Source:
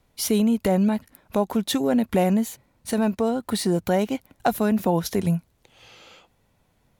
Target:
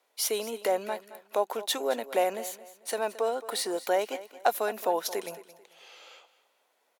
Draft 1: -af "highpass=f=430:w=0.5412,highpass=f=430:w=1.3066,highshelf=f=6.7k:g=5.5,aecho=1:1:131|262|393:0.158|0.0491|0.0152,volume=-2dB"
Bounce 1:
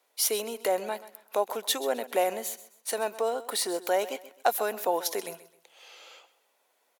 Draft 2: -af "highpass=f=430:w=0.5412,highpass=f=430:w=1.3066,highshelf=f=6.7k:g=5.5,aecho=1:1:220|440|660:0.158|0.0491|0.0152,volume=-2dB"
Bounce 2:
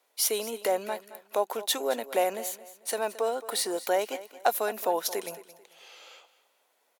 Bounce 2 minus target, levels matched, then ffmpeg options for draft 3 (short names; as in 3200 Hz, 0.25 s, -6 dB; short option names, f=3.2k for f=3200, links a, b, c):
8000 Hz band +2.5 dB
-af "highpass=f=430:w=0.5412,highpass=f=430:w=1.3066,aecho=1:1:220|440|660:0.158|0.0491|0.0152,volume=-2dB"